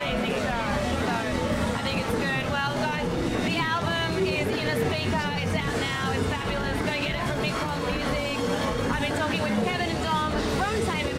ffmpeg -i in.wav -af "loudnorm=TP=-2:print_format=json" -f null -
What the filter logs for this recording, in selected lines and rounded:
"input_i" : "-26.3",
"input_tp" : "-12.8",
"input_lra" : "0.9",
"input_thresh" : "-36.3",